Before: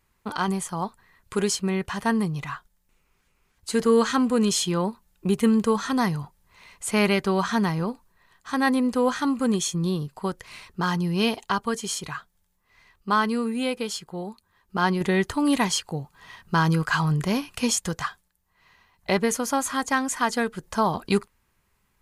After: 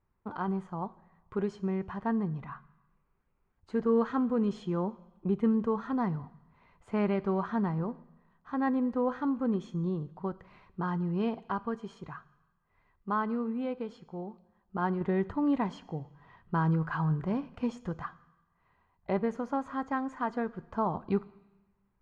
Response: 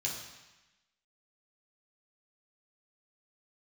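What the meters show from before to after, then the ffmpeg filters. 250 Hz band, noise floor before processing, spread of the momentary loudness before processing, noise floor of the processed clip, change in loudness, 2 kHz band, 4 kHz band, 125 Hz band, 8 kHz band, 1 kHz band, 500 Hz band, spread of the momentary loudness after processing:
-6.0 dB, -70 dBFS, 13 LU, -74 dBFS, -7.5 dB, -14.0 dB, under -20 dB, -6.0 dB, under -35 dB, -8.0 dB, -7.0 dB, 13 LU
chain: -filter_complex "[0:a]lowpass=1.2k,asplit=2[a][b];[1:a]atrim=start_sample=2205,highshelf=f=5.8k:g=9.5[c];[b][c]afir=irnorm=-1:irlink=0,volume=-18.5dB[d];[a][d]amix=inputs=2:normalize=0,volume=-6.5dB"

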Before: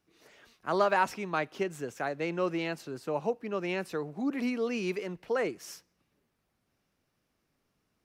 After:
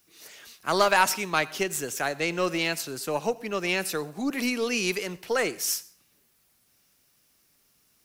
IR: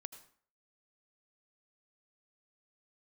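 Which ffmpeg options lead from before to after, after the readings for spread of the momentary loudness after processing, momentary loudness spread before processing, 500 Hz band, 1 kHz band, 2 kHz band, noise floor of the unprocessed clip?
9 LU, 9 LU, +3.0 dB, +5.0 dB, +8.5 dB, -79 dBFS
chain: -filter_complex "[0:a]aeval=exprs='0.211*(cos(1*acos(clip(val(0)/0.211,-1,1)))-cos(1*PI/2))+0.00841*(cos(4*acos(clip(val(0)/0.211,-1,1)))-cos(4*PI/2))':c=same,crystalizer=i=6.5:c=0,asplit=2[a][b];[1:a]atrim=start_sample=2205[c];[b][c]afir=irnorm=-1:irlink=0,volume=-1.5dB[d];[a][d]amix=inputs=2:normalize=0,volume=-1.5dB"

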